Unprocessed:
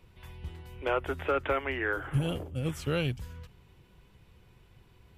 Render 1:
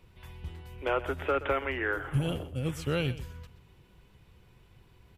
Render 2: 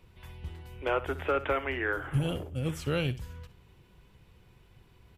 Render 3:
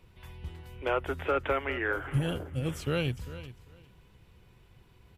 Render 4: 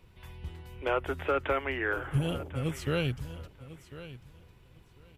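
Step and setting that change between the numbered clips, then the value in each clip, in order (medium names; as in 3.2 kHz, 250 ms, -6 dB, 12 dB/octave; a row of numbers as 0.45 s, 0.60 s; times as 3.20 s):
feedback delay, time: 125 ms, 63 ms, 400 ms, 1048 ms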